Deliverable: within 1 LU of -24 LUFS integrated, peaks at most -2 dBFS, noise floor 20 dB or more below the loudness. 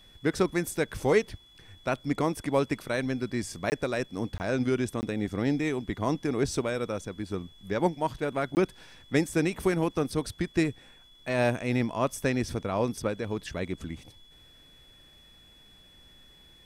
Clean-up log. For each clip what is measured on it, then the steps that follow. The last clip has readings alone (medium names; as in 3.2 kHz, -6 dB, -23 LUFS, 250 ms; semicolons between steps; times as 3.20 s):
dropouts 4; longest dropout 19 ms; steady tone 3.4 kHz; tone level -55 dBFS; loudness -29.5 LUFS; peak level -10.0 dBFS; loudness target -24.0 LUFS
-> interpolate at 3.70/4.38/5.01/8.55 s, 19 ms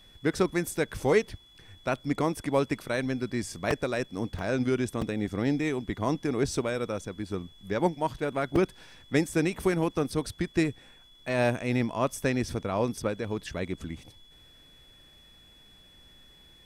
dropouts 0; steady tone 3.4 kHz; tone level -55 dBFS
-> band-stop 3.4 kHz, Q 30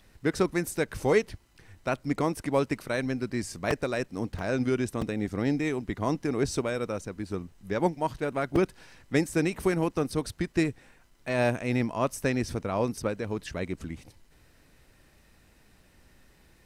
steady tone not found; loudness -29.5 LUFS; peak level -10.0 dBFS; loudness target -24.0 LUFS
-> trim +5.5 dB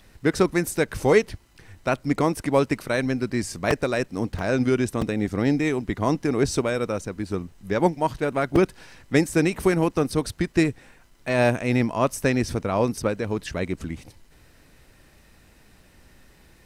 loudness -24.0 LUFS; peak level -4.5 dBFS; noise floor -55 dBFS